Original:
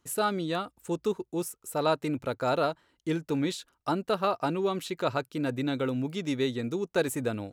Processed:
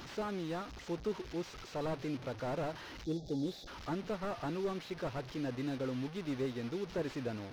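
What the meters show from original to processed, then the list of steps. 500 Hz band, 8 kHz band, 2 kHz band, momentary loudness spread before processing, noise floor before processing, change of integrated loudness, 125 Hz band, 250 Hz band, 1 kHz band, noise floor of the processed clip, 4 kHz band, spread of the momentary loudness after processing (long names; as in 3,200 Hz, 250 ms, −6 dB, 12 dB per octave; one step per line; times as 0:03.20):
−9.0 dB, −15.0 dB, −9.5 dB, 5 LU, −77 dBFS, −9.0 dB, −6.5 dB, −7.5 dB, −12.0 dB, −50 dBFS, −10.0 dB, 4 LU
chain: linear delta modulator 32 kbit/s, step −34 dBFS
time-frequency box erased 0:03.05–0:03.67, 840–3,300 Hz
slew-rate limiting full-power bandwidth 32 Hz
level −7.5 dB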